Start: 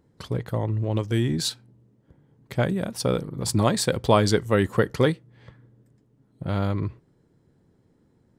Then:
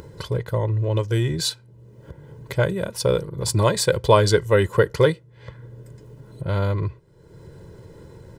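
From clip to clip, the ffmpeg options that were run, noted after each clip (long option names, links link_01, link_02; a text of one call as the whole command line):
ffmpeg -i in.wav -af "aecho=1:1:2:0.75,acompressor=mode=upward:threshold=-28dB:ratio=2.5,volume=1dB" out.wav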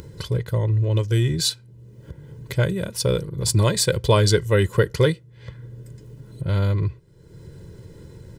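ffmpeg -i in.wav -af "equalizer=frequency=820:width_type=o:width=2:gain=-9,volume=3dB" out.wav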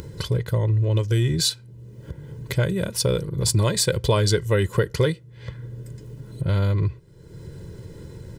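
ffmpeg -i in.wav -af "acompressor=threshold=-23dB:ratio=2,volume=3dB" out.wav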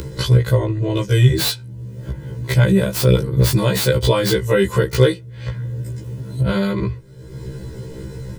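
ffmpeg -i in.wav -filter_complex "[0:a]acrossover=split=300|3700[link_01][link_02][link_03];[link_03]aeval=exprs='(mod(17.8*val(0)+1,2)-1)/17.8':channel_layout=same[link_04];[link_01][link_02][link_04]amix=inputs=3:normalize=0,alimiter=level_in=12dB:limit=-1dB:release=50:level=0:latency=1,afftfilt=real='re*1.73*eq(mod(b,3),0)':imag='im*1.73*eq(mod(b,3),0)':win_size=2048:overlap=0.75,volume=-1.5dB" out.wav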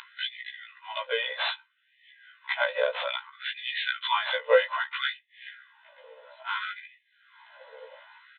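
ffmpeg -i in.wav -filter_complex "[0:a]asplit=2[link_01][link_02];[link_02]acrusher=samples=8:mix=1:aa=0.000001,volume=-11.5dB[link_03];[link_01][link_03]amix=inputs=2:normalize=0,aresample=8000,aresample=44100,afftfilt=real='re*gte(b*sr/1024,450*pow(1700/450,0.5+0.5*sin(2*PI*0.61*pts/sr)))':imag='im*gte(b*sr/1024,450*pow(1700/450,0.5+0.5*sin(2*PI*0.61*pts/sr)))':win_size=1024:overlap=0.75,volume=-3dB" out.wav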